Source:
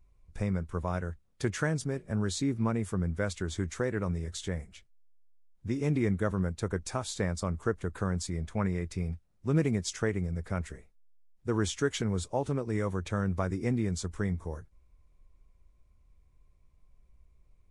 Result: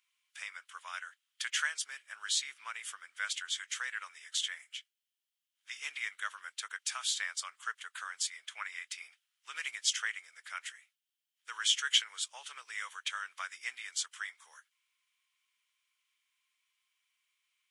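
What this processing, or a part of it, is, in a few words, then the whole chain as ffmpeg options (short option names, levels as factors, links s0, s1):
headphones lying on a table: -af "highpass=f=1500:w=0.5412,highpass=f=1500:w=1.3066,equalizer=f=3100:t=o:w=0.32:g=11.5,volume=1.68"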